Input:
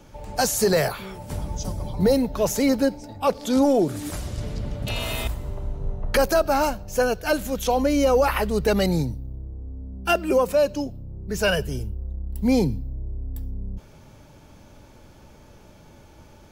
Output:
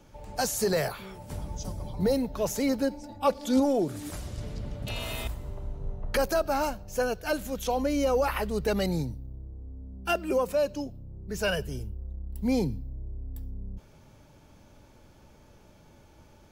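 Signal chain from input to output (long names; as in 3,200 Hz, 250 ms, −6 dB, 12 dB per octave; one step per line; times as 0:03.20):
0:02.90–0:03.60: comb filter 3.5 ms, depth 66%
level −6.5 dB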